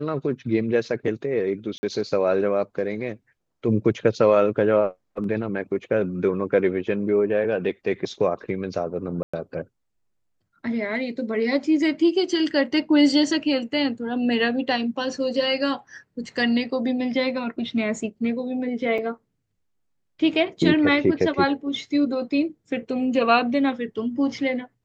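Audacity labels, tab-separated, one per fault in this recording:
1.780000	1.830000	drop-out 50 ms
9.230000	9.340000	drop-out 105 ms
18.980000	18.980000	drop-out 4.1 ms

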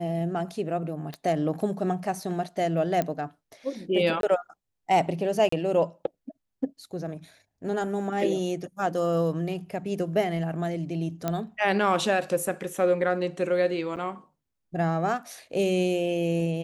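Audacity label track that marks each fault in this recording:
1.140000	1.140000	click −21 dBFS
3.020000	3.020000	click −14 dBFS
4.210000	4.230000	drop-out 22 ms
5.490000	5.520000	drop-out 34 ms
11.280000	11.280000	click −13 dBFS
13.960000	13.970000	drop-out 8.3 ms

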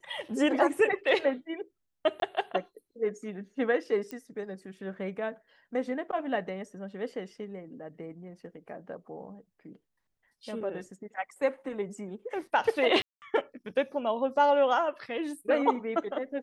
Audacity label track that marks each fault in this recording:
2.200000	2.220000	drop-out 22 ms
4.110000	4.110000	click −24 dBFS
13.020000	13.220000	drop-out 199 ms

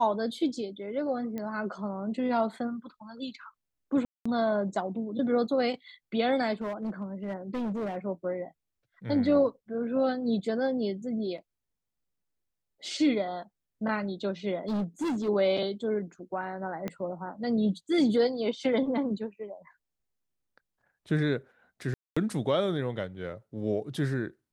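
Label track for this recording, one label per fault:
1.380000	1.380000	click −23 dBFS
4.050000	4.250000	drop-out 205 ms
6.610000	7.970000	clipping −29 dBFS
14.680000	15.290000	clipping −27 dBFS
16.880000	16.880000	click −20 dBFS
21.940000	22.160000	drop-out 225 ms

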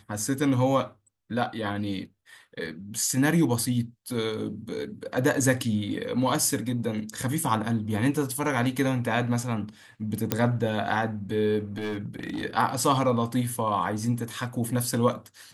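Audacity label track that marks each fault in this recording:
10.320000	10.320000	click −7 dBFS
11.770000	12.440000	clipping −27 dBFS

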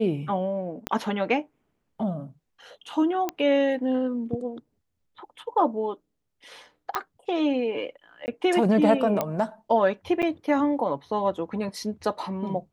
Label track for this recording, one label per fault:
0.870000	0.870000	click −12 dBFS
3.290000	3.290000	click −13 dBFS
6.950000	6.950000	click −12 dBFS
8.260000	8.280000	drop-out 19 ms
9.210000	9.210000	click −11 dBFS
10.220000	10.230000	drop-out 7.7 ms

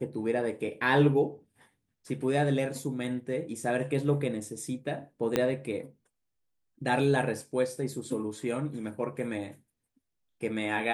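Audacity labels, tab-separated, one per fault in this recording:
5.360000	5.360000	click −11 dBFS

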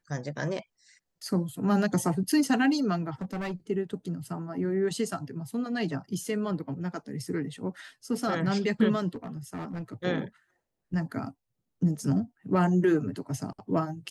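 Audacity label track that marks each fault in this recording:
3.210000	3.520000	clipping −29.5 dBFS
9.080000	9.940000	clipping −32 dBFS

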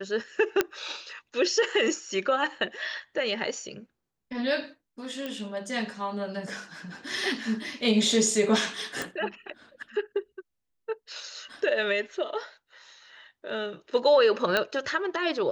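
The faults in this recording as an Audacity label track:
0.610000	0.610000	click −8 dBFS
5.260000	5.260000	click −20 dBFS
9.020000	9.020000	click
14.570000	14.570000	click −10 dBFS

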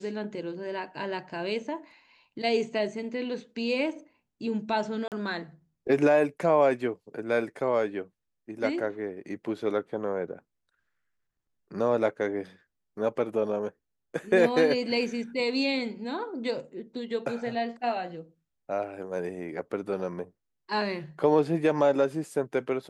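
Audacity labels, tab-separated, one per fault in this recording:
5.080000	5.120000	drop-out 38 ms

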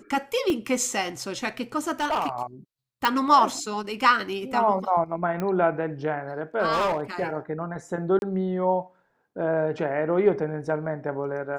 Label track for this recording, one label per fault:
0.500000	0.500000	drop-out 2.2 ms
2.000000	2.430000	clipping −21 dBFS
3.050000	3.050000	click
5.400000	5.400000	click −17 dBFS
6.720000	7.230000	clipping −20.5 dBFS
8.190000	8.220000	drop-out 31 ms

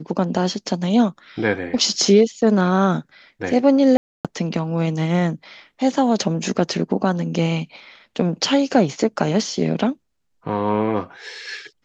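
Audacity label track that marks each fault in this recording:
3.970000	4.250000	drop-out 277 ms

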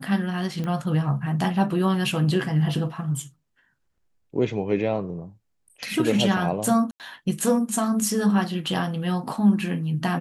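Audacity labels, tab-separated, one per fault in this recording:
0.640000	0.640000	click −19 dBFS
6.910000	7.000000	drop-out 88 ms

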